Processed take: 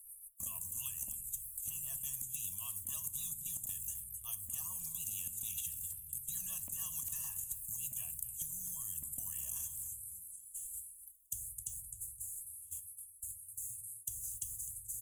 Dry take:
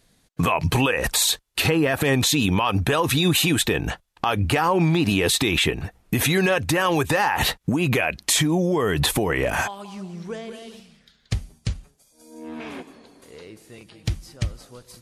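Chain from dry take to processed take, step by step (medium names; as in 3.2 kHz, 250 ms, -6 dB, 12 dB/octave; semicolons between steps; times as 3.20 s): inverse Chebyshev band-stop 240–4500 Hz, stop band 50 dB; pre-emphasis filter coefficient 0.97; hum notches 60/120 Hz; gate -60 dBFS, range -20 dB; treble shelf 5.9 kHz +8 dB; comb 1.8 ms, depth 98%; compressor with a negative ratio -32 dBFS, ratio -0.5; static phaser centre 1.5 kHz, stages 6; rotary cabinet horn 6.7 Hz, later 1.2 Hz, at 7.95 s; tape echo 259 ms, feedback 33%, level -16 dB, low-pass 4.6 kHz; on a send at -12.5 dB: reverberation RT60 0.45 s, pre-delay 13 ms; on the sum: spectrum-flattening compressor 10:1; trim -2.5 dB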